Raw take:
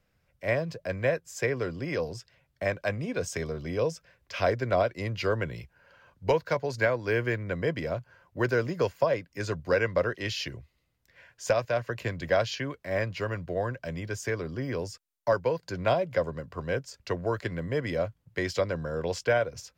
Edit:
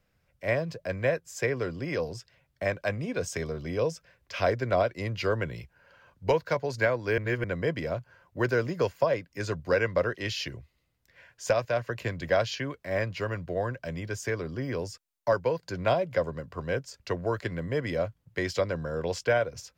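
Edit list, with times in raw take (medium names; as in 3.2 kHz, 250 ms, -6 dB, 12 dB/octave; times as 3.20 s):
7.18–7.44 s: reverse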